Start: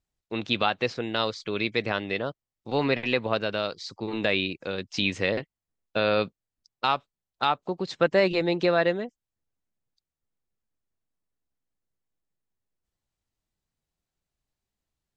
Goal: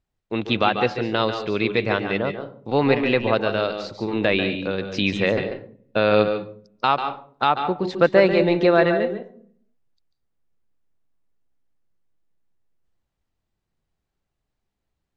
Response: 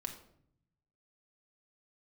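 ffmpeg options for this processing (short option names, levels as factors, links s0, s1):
-filter_complex "[0:a]lowpass=f=2300:p=1,asplit=2[s0][s1];[1:a]atrim=start_sample=2205,asetrate=70560,aresample=44100,adelay=142[s2];[s1][s2]afir=irnorm=-1:irlink=0,volume=0.794[s3];[s0][s3]amix=inputs=2:normalize=0,volume=2"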